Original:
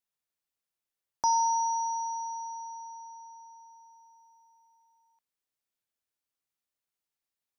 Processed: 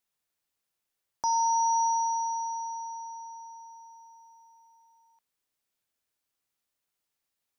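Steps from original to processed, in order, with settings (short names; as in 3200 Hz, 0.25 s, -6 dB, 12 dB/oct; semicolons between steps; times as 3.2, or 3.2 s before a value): limiter -25.5 dBFS, peak gain reduction 8 dB; gain +5.5 dB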